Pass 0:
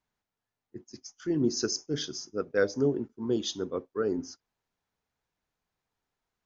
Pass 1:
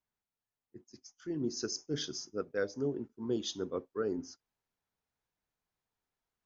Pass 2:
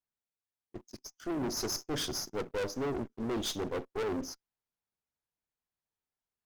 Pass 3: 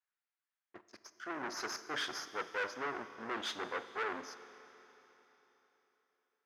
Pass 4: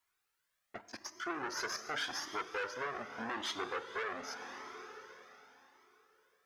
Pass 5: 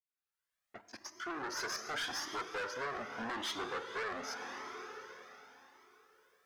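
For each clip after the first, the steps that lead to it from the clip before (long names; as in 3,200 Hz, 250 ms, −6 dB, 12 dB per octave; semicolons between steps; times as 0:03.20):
speech leveller 0.5 s; level −6 dB
leveller curve on the samples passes 3; asymmetric clip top −43 dBFS; level −1.5 dB
resonant band-pass 1,600 Hz, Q 1.7; four-comb reverb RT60 3.8 s, combs from 28 ms, DRR 12 dB; level +7 dB
downward compressor 2.5 to 1, threshold −51 dBFS, peak gain reduction 13.5 dB; flanger whose copies keep moving one way rising 0.86 Hz; level +15.5 dB
fade in at the beginning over 1.76 s; soft clipping −35.5 dBFS, distortion −12 dB; level +3 dB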